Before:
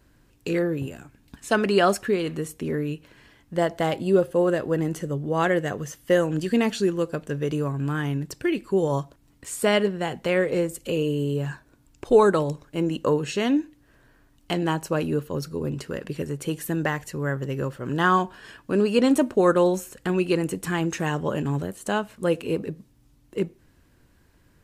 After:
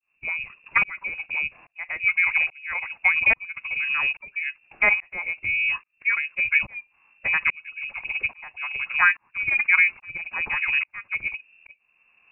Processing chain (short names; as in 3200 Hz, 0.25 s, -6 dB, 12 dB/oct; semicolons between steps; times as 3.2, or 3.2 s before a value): time stretch by phase-locked vocoder 0.5×; tremolo saw up 1.2 Hz, depth 100%; inverted band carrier 2700 Hz; gain +4.5 dB